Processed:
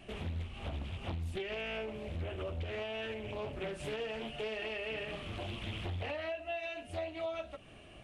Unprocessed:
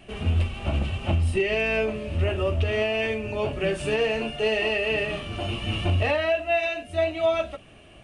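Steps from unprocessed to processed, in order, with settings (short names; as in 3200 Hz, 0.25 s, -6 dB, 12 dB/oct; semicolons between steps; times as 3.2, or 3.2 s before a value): compressor 3:1, threshold -35 dBFS, peak gain reduction 12.5 dB; Doppler distortion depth 0.65 ms; gain -4.5 dB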